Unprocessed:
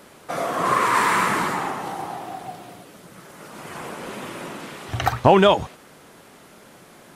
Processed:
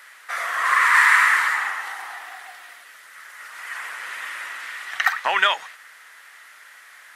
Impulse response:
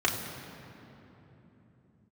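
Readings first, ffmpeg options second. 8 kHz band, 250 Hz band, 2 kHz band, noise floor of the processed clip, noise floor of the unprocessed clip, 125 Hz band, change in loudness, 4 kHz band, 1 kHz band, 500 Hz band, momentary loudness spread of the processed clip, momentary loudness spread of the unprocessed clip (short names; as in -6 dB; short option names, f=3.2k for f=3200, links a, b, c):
+0.5 dB, under -25 dB, +9.5 dB, -47 dBFS, -49 dBFS, under -35 dB, +1.5 dB, +2.0 dB, -2.0 dB, -16.0 dB, 22 LU, 21 LU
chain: -af "highpass=f=1.5k:t=q:w=1.8,equalizer=f=1.9k:w=5.6:g=9.5"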